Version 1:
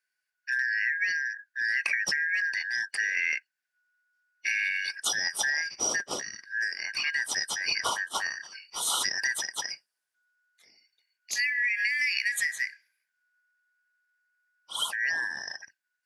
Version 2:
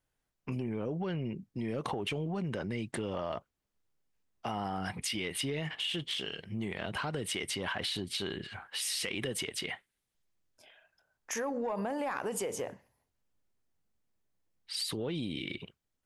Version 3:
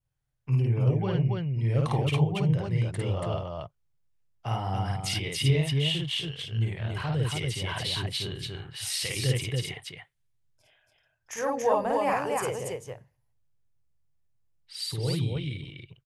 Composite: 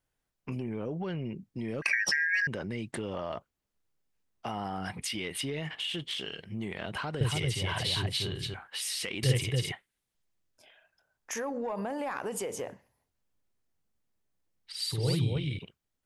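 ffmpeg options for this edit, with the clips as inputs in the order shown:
-filter_complex "[2:a]asplit=3[a][b][c];[1:a]asplit=5[d][e][f][g][h];[d]atrim=end=1.822[i];[0:a]atrim=start=1.818:end=2.472[j];[e]atrim=start=2.468:end=7.212[k];[a]atrim=start=7.208:end=8.542[l];[f]atrim=start=8.538:end=9.232[m];[b]atrim=start=9.228:end=9.722[n];[g]atrim=start=9.718:end=14.722[o];[c]atrim=start=14.718:end=15.592[p];[h]atrim=start=15.588[q];[i][j]acrossfade=d=0.004:c1=hsin:c2=hsin[r];[r][k]acrossfade=d=0.004:c1=hsin:c2=hsin[s];[s][l]acrossfade=d=0.004:c1=hsin:c2=hsin[t];[t][m]acrossfade=d=0.004:c1=hsin:c2=hsin[u];[u][n]acrossfade=d=0.004:c1=hsin:c2=hsin[v];[v][o]acrossfade=d=0.004:c1=hsin:c2=hsin[w];[w][p]acrossfade=d=0.004:c1=hsin:c2=hsin[x];[x][q]acrossfade=d=0.004:c1=hsin:c2=hsin"

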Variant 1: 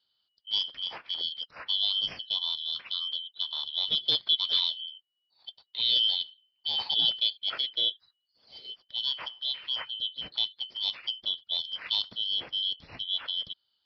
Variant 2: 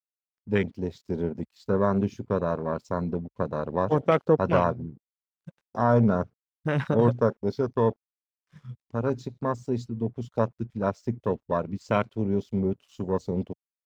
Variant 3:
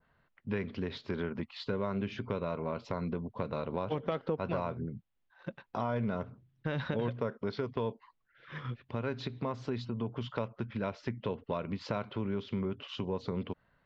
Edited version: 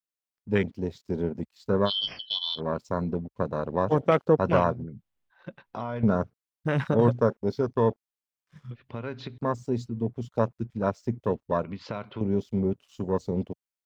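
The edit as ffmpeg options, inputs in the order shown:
-filter_complex "[2:a]asplit=3[a][b][c];[1:a]asplit=5[d][e][f][g][h];[d]atrim=end=1.91[i];[0:a]atrim=start=1.85:end=2.61[j];[e]atrim=start=2.55:end=4.842[k];[a]atrim=start=4.838:end=6.032[l];[f]atrim=start=6.028:end=8.712[m];[b]atrim=start=8.708:end=9.382[n];[g]atrim=start=9.378:end=11.642[o];[c]atrim=start=11.638:end=12.212[p];[h]atrim=start=12.208[q];[i][j]acrossfade=d=0.06:c1=tri:c2=tri[r];[r][k]acrossfade=d=0.06:c1=tri:c2=tri[s];[s][l]acrossfade=d=0.004:c1=hsin:c2=hsin[t];[t][m]acrossfade=d=0.004:c1=hsin:c2=hsin[u];[u][n]acrossfade=d=0.004:c1=hsin:c2=hsin[v];[v][o]acrossfade=d=0.004:c1=hsin:c2=hsin[w];[w][p]acrossfade=d=0.004:c1=hsin:c2=hsin[x];[x][q]acrossfade=d=0.004:c1=hsin:c2=hsin"

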